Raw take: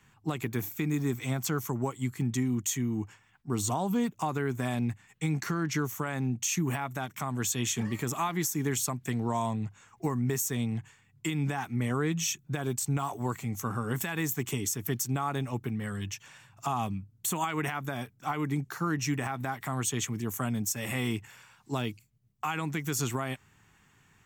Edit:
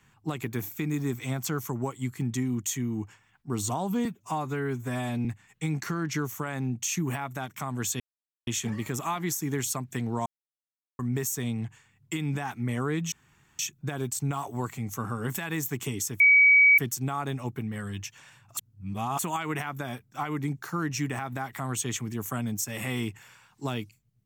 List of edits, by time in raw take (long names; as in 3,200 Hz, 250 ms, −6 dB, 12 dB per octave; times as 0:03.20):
0:04.05–0:04.85: time-stretch 1.5×
0:07.60: splice in silence 0.47 s
0:09.39–0:10.12: silence
0:12.25: splice in room tone 0.47 s
0:14.86: insert tone 2,270 Hz −14 dBFS 0.58 s
0:16.65–0:17.27: reverse